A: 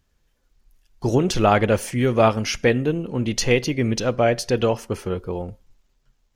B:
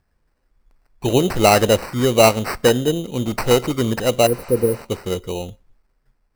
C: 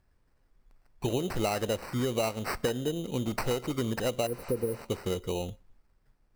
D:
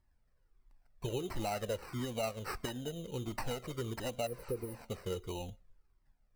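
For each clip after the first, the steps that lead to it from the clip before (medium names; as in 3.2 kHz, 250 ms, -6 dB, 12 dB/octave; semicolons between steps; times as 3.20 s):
dynamic bell 580 Hz, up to +5 dB, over -28 dBFS, Q 0.82; sample-and-hold 13×; spectral replace 4.29–4.77 s, 540–9100 Hz after
compression 6:1, threshold -23 dBFS, peak gain reduction 14.5 dB; added noise brown -67 dBFS; trim -4 dB
Shepard-style flanger falling 1.5 Hz; trim -3 dB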